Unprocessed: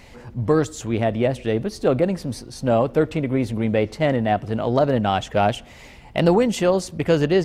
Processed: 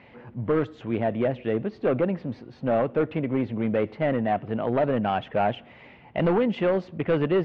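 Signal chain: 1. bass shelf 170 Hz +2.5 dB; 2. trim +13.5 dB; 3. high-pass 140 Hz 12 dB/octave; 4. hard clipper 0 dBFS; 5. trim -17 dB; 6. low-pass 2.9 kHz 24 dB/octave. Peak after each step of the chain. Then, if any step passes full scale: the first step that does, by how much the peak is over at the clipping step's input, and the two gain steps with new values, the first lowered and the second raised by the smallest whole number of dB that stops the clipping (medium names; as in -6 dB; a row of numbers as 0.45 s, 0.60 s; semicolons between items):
-5.0 dBFS, +8.5 dBFS, +9.0 dBFS, 0.0 dBFS, -17.0 dBFS, -15.5 dBFS; step 2, 9.0 dB; step 2 +4.5 dB, step 5 -8 dB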